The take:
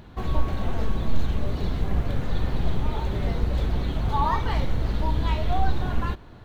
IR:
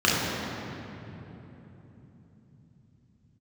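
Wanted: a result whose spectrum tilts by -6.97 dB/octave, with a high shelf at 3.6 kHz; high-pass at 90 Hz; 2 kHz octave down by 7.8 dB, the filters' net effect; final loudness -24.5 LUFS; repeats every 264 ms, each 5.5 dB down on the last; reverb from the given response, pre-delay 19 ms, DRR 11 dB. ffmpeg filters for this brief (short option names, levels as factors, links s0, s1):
-filter_complex "[0:a]highpass=90,equalizer=f=2000:t=o:g=-8,highshelf=f=3600:g=-8.5,aecho=1:1:264|528|792|1056|1320|1584|1848:0.531|0.281|0.149|0.079|0.0419|0.0222|0.0118,asplit=2[s0][s1];[1:a]atrim=start_sample=2205,adelay=19[s2];[s1][s2]afir=irnorm=-1:irlink=0,volume=0.0316[s3];[s0][s3]amix=inputs=2:normalize=0,volume=1.68"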